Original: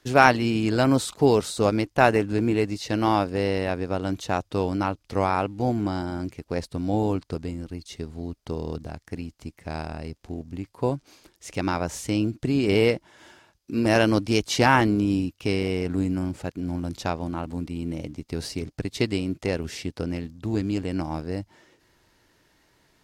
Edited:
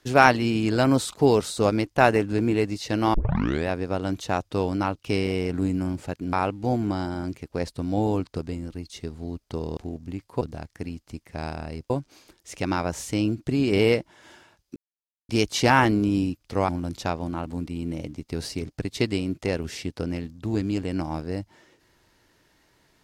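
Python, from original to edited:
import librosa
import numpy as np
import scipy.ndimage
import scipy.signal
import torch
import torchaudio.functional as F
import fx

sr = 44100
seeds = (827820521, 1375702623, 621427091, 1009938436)

y = fx.edit(x, sr, fx.tape_start(start_s=3.14, length_s=0.54),
    fx.swap(start_s=4.99, length_s=0.3, other_s=15.35, other_length_s=1.34),
    fx.move(start_s=10.22, length_s=0.64, to_s=8.73),
    fx.silence(start_s=13.72, length_s=0.53), tone=tone)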